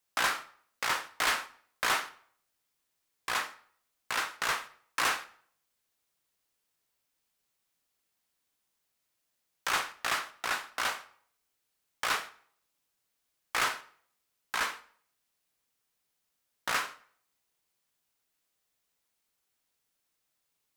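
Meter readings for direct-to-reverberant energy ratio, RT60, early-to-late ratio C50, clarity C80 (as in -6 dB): 11.0 dB, 0.60 s, 16.5 dB, 20.0 dB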